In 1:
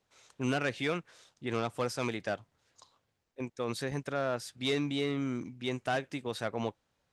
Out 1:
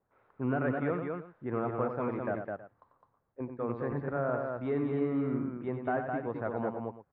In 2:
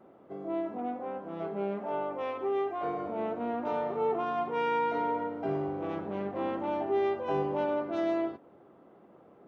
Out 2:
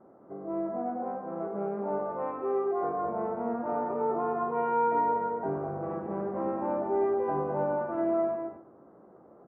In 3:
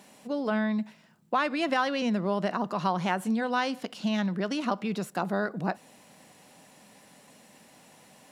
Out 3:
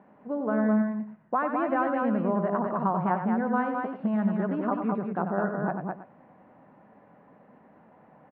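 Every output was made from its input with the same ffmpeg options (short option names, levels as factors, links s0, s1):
-filter_complex "[0:a]lowpass=f=1500:w=0.5412,lowpass=f=1500:w=1.3066,asplit=2[s0][s1];[s1]aecho=0:1:93|209|322:0.422|0.631|0.141[s2];[s0][s2]amix=inputs=2:normalize=0"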